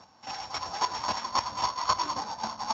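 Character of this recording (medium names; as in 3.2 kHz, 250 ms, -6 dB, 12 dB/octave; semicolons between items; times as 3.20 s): a buzz of ramps at a fixed pitch in blocks of 8 samples; chopped level 3.7 Hz, depth 65%, duty 15%; Speex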